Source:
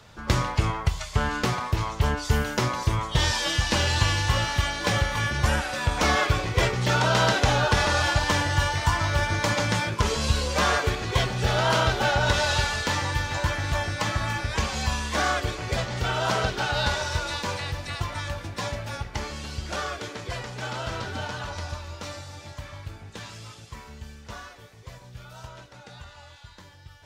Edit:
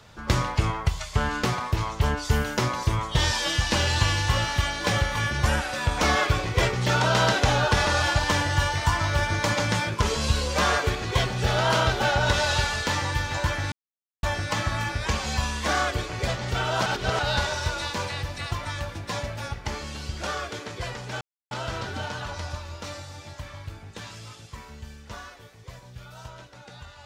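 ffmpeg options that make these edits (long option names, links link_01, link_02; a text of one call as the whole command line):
ffmpeg -i in.wav -filter_complex "[0:a]asplit=5[link_01][link_02][link_03][link_04][link_05];[link_01]atrim=end=13.72,asetpts=PTS-STARTPTS,afade=type=out:start_time=13.716:duration=0.004:curve=hsin,apad=pad_dur=0.51[link_06];[link_02]atrim=start=13.72:end=16.352,asetpts=PTS-STARTPTS,afade=type=in:duration=0.004:curve=hsin[link_07];[link_03]atrim=start=16.348:end=16.682,asetpts=PTS-STARTPTS,areverse[link_08];[link_04]atrim=start=16.678:end=20.7,asetpts=PTS-STARTPTS,afade=type=out:start_time=4.018:duration=0.004:curve=hsin,apad=pad_dur=0.3[link_09];[link_05]atrim=start=20.7,asetpts=PTS-STARTPTS,afade=type=in:duration=0.004:curve=hsin[link_10];[link_06][link_07]concat=n=2:v=0:a=1[link_11];[link_11][link_08]acrossfade=duration=0.004:curve1=hsin:curve2=hsin[link_12];[link_09][link_10]concat=n=2:v=0:a=1[link_13];[link_12][link_13]acrossfade=duration=0.004:curve1=hsin:curve2=hsin" out.wav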